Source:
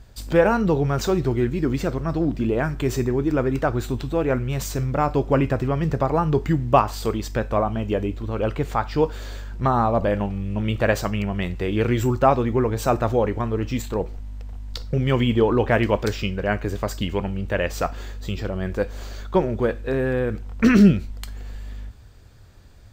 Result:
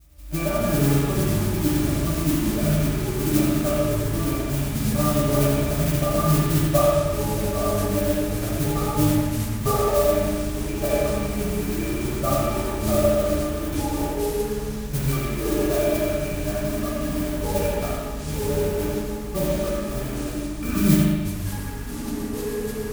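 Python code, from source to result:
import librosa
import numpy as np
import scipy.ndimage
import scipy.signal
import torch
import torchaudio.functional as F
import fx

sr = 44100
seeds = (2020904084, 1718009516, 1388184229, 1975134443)

p1 = fx.spec_trails(x, sr, decay_s=0.37)
p2 = fx.octave_resonator(p1, sr, note='D', decay_s=0.17)
p3 = fx.quant_dither(p2, sr, seeds[0], bits=6, dither='none')
p4 = p2 + (p3 * 10.0 ** (-7.0 / 20.0))
p5 = fx.mod_noise(p4, sr, seeds[1], snr_db=13)
p6 = fx.high_shelf(p5, sr, hz=6200.0, db=5.5)
p7 = p6 + fx.echo_feedback(p6, sr, ms=83, feedback_pct=37, wet_db=-6, dry=0)
p8 = fx.rev_spring(p7, sr, rt60_s=1.2, pass_ms=(39, 43), chirp_ms=55, drr_db=-3.0)
y = fx.echo_pitch(p8, sr, ms=129, semitones=-6, count=3, db_per_echo=-6.0)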